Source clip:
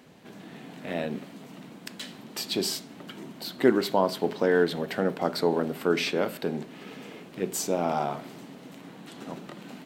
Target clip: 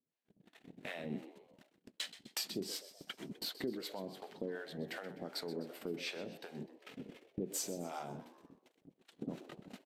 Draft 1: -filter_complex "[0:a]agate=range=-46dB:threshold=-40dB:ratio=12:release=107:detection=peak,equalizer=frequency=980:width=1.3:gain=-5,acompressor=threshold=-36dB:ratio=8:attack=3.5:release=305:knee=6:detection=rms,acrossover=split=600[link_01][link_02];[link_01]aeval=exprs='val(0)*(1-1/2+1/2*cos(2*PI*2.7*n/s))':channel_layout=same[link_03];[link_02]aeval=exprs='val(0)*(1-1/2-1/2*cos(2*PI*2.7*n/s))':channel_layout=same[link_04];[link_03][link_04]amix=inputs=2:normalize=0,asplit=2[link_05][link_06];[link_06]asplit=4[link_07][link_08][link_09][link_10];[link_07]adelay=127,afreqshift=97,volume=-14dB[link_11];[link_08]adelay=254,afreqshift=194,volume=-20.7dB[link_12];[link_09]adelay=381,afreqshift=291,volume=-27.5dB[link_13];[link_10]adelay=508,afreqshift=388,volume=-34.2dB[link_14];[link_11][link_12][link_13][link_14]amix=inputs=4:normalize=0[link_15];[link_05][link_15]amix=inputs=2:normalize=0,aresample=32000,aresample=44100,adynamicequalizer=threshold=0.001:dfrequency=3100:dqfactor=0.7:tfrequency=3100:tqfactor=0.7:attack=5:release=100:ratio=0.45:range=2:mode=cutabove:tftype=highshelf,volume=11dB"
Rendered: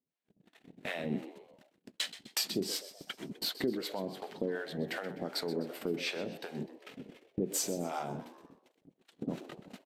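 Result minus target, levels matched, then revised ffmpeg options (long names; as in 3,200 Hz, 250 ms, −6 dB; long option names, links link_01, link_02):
downward compressor: peak gain reduction −6.5 dB
-filter_complex "[0:a]agate=range=-46dB:threshold=-40dB:ratio=12:release=107:detection=peak,equalizer=frequency=980:width=1.3:gain=-5,acompressor=threshold=-43.5dB:ratio=8:attack=3.5:release=305:knee=6:detection=rms,acrossover=split=600[link_01][link_02];[link_01]aeval=exprs='val(0)*(1-1/2+1/2*cos(2*PI*2.7*n/s))':channel_layout=same[link_03];[link_02]aeval=exprs='val(0)*(1-1/2-1/2*cos(2*PI*2.7*n/s))':channel_layout=same[link_04];[link_03][link_04]amix=inputs=2:normalize=0,asplit=2[link_05][link_06];[link_06]asplit=4[link_07][link_08][link_09][link_10];[link_07]adelay=127,afreqshift=97,volume=-14dB[link_11];[link_08]adelay=254,afreqshift=194,volume=-20.7dB[link_12];[link_09]adelay=381,afreqshift=291,volume=-27.5dB[link_13];[link_10]adelay=508,afreqshift=388,volume=-34.2dB[link_14];[link_11][link_12][link_13][link_14]amix=inputs=4:normalize=0[link_15];[link_05][link_15]amix=inputs=2:normalize=0,aresample=32000,aresample=44100,adynamicequalizer=threshold=0.001:dfrequency=3100:dqfactor=0.7:tfrequency=3100:tqfactor=0.7:attack=5:release=100:ratio=0.45:range=2:mode=cutabove:tftype=highshelf,volume=11dB"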